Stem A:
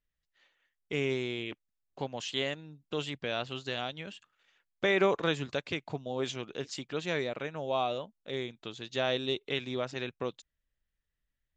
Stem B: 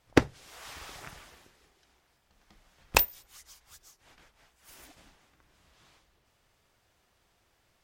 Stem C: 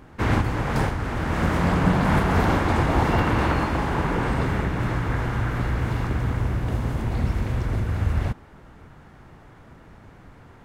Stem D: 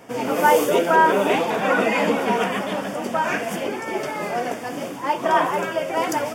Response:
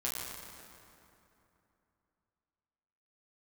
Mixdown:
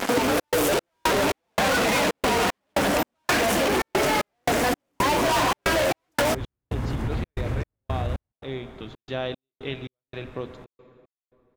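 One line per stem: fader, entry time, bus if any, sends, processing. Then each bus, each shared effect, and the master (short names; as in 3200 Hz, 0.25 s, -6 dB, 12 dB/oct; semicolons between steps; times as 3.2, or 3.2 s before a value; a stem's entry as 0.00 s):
-2.0 dB, 0.15 s, send -11.5 dB, LPF 3900 Hz; low shelf 230 Hz +10 dB; notches 50/100/150/200/250 Hz
-0.5 dB, 0.00 s, no send, dry
+0.5 dB, 0.00 s, no send, limiter -17.5 dBFS, peak gain reduction 10 dB
+2.5 dB, 0.00 s, no send, fuzz box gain 41 dB, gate -43 dBFS; HPF 170 Hz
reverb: on, RT60 2.9 s, pre-delay 7 ms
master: bell 290 Hz +2 dB 0.34 oct; step gate "xxx.xx..xx..x" 114 bpm -60 dB; compressor 3:1, threshold -23 dBFS, peak gain reduction 12 dB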